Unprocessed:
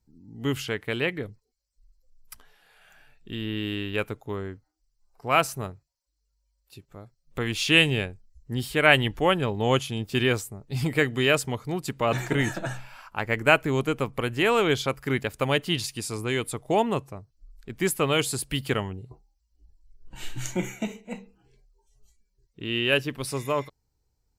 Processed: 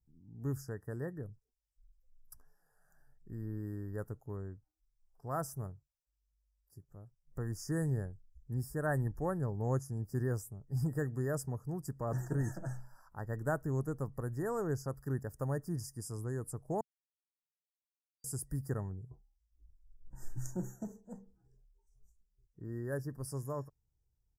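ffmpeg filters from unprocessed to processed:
-filter_complex "[0:a]asplit=3[a][b][c];[a]atrim=end=16.81,asetpts=PTS-STARTPTS,afade=t=out:st=16.806:d=0.004:c=hsin[d];[b]atrim=start=16.81:end=18.24,asetpts=PTS-STARTPTS,volume=0[e];[c]atrim=start=18.24,asetpts=PTS-STARTPTS,afade=t=in:d=0.004:c=hsin[f];[d][e][f]concat=n=3:v=0:a=1,afftfilt=real='re*(1-between(b*sr/4096,1900,4700))':imag='im*(1-between(b*sr/4096,1900,4700))':win_size=4096:overlap=0.75,firequalizer=gain_entry='entry(150,0);entry(220,-7);entry(3500,-23);entry(5100,-10);entry(11000,-4)':delay=0.05:min_phase=1,volume=-5dB"

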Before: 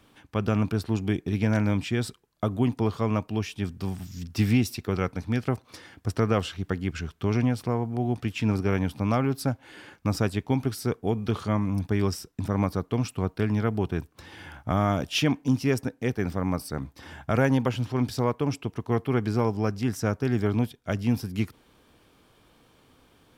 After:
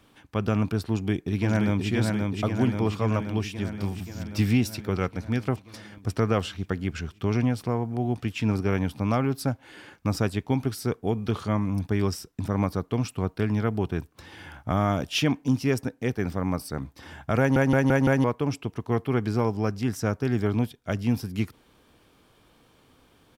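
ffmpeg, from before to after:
-filter_complex "[0:a]asplit=2[a][b];[b]afade=t=in:st=0.85:d=0.01,afade=t=out:st=1.88:d=0.01,aecho=0:1:530|1060|1590|2120|2650|3180|3710|4240|4770|5300|5830|6360:0.707946|0.495562|0.346893|0.242825|0.169978|0.118984|0.0832891|0.0583024|0.0408117|0.0285682|0.0199977|0.0139984[c];[a][c]amix=inputs=2:normalize=0,asplit=6[d][e][f][g][h][i];[d]atrim=end=17.562[j];[e]atrim=start=17.388:end=17.562[k];[f]atrim=start=17.388:end=17.562[l];[g]atrim=start=17.388:end=17.562[m];[h]atrim=start=17.388:end=17.562[n];[i]atrim=start=18.238[o];[j][k]acrossfade=d=0.004:c1=hsin:c2=hsin[p];[p][l]acrossfade=d=0.004:c1=hsin:c2=hsin[q];[q][m]acrossfade=d=0.004:c1=hsin:c2=hsin[r];[r][n]acrossfade=d=0.004:c1=hsin:c2=hsin[s];[s][o]acrossfade=d=0.004:c1=hsin:c2=hsin"

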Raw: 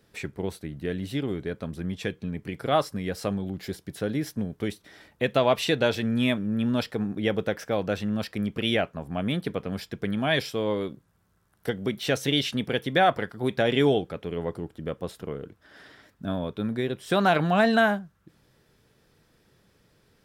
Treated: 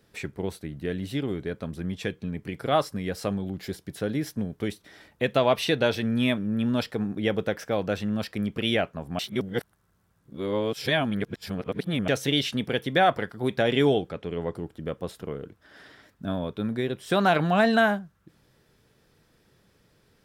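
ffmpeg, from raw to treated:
-filter_complex "[0:a]asettb=1/sr,asplit=3[a][b][c];[a]atrim=end=5.504[d];[b]atrim=start=5.5:end=6.57,asetpts=PTS-STARTPTS,afade=t=in:d=0.004:c=qsin,afade=t=out:st=1.066:d=0.004:c=qsin,bandreject=f=7.3k:w=6.8[e];[c]atrim=start=6.566[f];[d][e]acrossfade=d=0.004:c1=hsin:c2=qsin[g];[g][f]acrossfade=d=0.004:c1=qsin:c2=hsin,asettb=1/sr,asplit=3[h][i][j];[h]atrim=end=14.104[k];[i]atrim=start=14.1:end=14.55,asetpts=PTS-STARTPTS,afade=t=in:d=0.004:c=qsin,afade=t=out:st=0.446:d=0.004:c=qsin,lowpass=8.8k[l];[j]atrim=start=14.546[m];[k][l]acrossfade=d=0.004:c1=hsin:c2=qsin[n];[n][m]acrossfade=d=0.004:c1=qsin:c2=hsin,asplit=3[o][p][q];[o]atrim=end=9.192[r];[p]atrim=start=9.188:end=12.082,asetpts=PTS-STARTPTS,areverse[s];[q]atrim=start=12.078[t];[r][s]acrossfade=d=0.004:c1=hsin:c2=hsin[u];[u][t]acrossfade=d=0.004:c1=hsin:c2=hsin"

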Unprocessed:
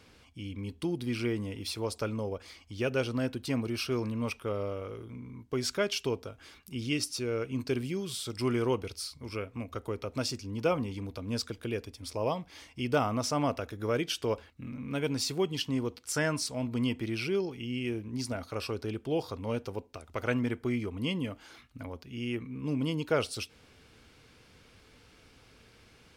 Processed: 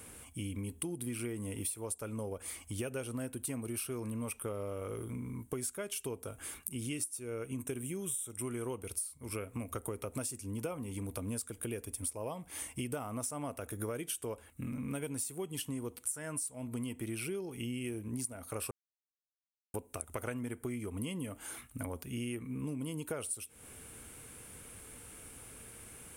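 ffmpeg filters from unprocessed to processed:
-filter_complex "[0:a]asettb=1/sr,asplit=3[a][b][c];[a]atrim=end=7.284[d];[b]atrim=start=7.28:end=8.81,asetpts=PTS-STARTPTS,afade=t=in:d=0.004:c=qsin,afade=t=out:st=1.526:d=0.004:c=qsin,asuperstop=centerf=4600:order=12:qfactor=3.3[e];[c]atrim=start=8.806[f];[d][e]acrossfade=d=0.004:c1=hsin:c2=qsin[g];[g][f]acrossfade=d=0.004:c1=qsin:c2=hsin,asplit=3[h][i][j];[h]atrim=end=18.71,asetpts=PTS-STARTPTS,afade=t=out:st=18.706:d=0.004:c=hsin[k];[i]atrim=start=18.71:end=19.74,asetpts=PTS-STARTPTS,volume=0[l];[j]atrim=start=19.74,asetpts=PTS-STARTPTS,afade=t=in:d=0.004:c=hsin[m];[k][l][m]concat=n=3:v=0:a=1,highshelf=f=6.8k:t=q:w=3:g=13.5,acompressor=threshold=-39dB:ratio=16,volume=4dB"

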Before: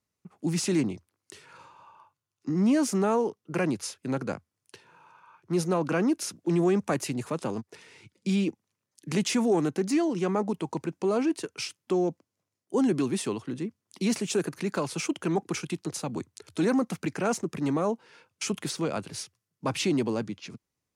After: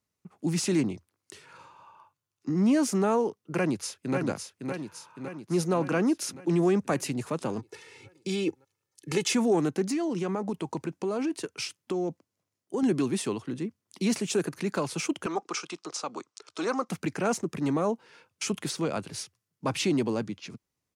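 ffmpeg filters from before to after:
-filter_complex "[0:a]asplit=2[a][b];[b]afade=t=in:st=3.56:d=0.01,afade=t=out:st=4.16:d=0.01,aecho=0:1:560|1120|1680|2240|2800|3360|3920|4480:0.562341|0.337405|0.202443|0.121466|0.0728794|0.0437277|0.0262366|0.015742[c];[a][c]amix=inputs=2:normalize=0,asettb=1/sr,asplit=3[d][e][f];[d]atrim=end=7.594[g];[e]atrim=start=7.59:end=9.33,asetpts=PTS-STARTPTS,afade=t=in:d=0.004:c=qsin,afade=t=out:st=1.736:d=0.004:c=qsin,aecho=1:1:2.3:0.7,atrim=end_sample=76734[h];[f]atrim=start=9.326[i];[g][h]acrossfade=d=0.004:c1=hsin:c2=qsin[j];[j][i]acrossfade=d=0.004:c1=qsin:c2=hsin,asettb=1/sr,asplit=3[k][l][m];[k]atrim=end=9.874[n];[l]atrim=start=9.87:end=12.83,asetpts=PTS-STARTPTS,afade=t=in:d=0.004:c=qsin,afade=t=out:st=2.956:d=0.004:c=qsin,acompressor=threshold=-25dB:ratio=6:attack=3.2:release=140:knee=1:detection=peak[o];[m]atrim=start=12.826[p];[n][o]acrossfade=d=0.004:c1=hsin:c2=qsin[q];[q][p]acrossfade=d=0.004:c1=qsin:c2=hsin,asettb=1/sr,asplit=3[r][s][t];[r]atrim=end=15.264[u];[s]atrim=start=15.26:end=16.89,asetpts=PTS-STARTPTS,afade=t=in:d=0.004:c=qsin,afade=t=out:st=1.626:d=0.004:c=qsin,highpass=440,equalizer=f=1.2k:t=q:w=4:g=9,equalizer=f=1.8k:t=q:w=4:g=-4,equalizer=f=5.4k:t=q:w=4:g=5,lowpass=f=8.1k:w=0.5412,lowpass=f=8.1k:w=1.3066[v];[t]atrim=start=16.886[w];[u][v]acrossfade=d=0.004:c1=hsin:c2=qsin[x];[x][w]acrossfade=d=0.004:c1=qsin:c2=hsin"

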